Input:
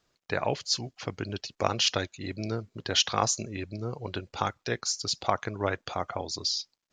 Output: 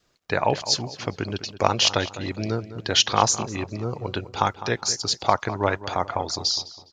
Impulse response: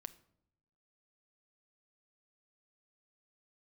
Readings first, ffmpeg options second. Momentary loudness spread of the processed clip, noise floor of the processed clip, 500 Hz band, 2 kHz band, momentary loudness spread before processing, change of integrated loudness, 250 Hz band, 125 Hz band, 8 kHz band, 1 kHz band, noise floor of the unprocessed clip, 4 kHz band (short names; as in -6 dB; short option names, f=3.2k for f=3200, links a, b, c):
11 LU, -57 dBFS, +6.0 dB, +6.0 dB, 11 LU, +6.0 dB, +5.5 dB, +6.0 dB, +5.5 dB, +8.0 dB, -81 dBFS, +5.5 dB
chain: -filter_complex "[0:a]adynamicequalizer=threshold=0.00562:dfrequency=910:dqfactor=4.5:tfrequency=910:tqfactor=4.5:attack=5:release=100:ratio=0.375:range=3:mode=boostabove:tftype=bell,asplit=2[a][b];[b]adelay=205,lowpass=f=2.9k:p=1,volume=-13.5dB,asplit=2[c][d];[d]adelay=205,lowpass=f=2.9k:p=1,volume=0.42,asplit=2[e][f];[f]adelay=205,lowpass=f=2.9k:p=1,volume=0.42,asplit=2[g][h];[h]adelay=205,lowpass=f=2.9k:p=1,volume=0.42[i];[a][c][e][g][i]amix=inputs=5:normalize=0,volume=5.5dB"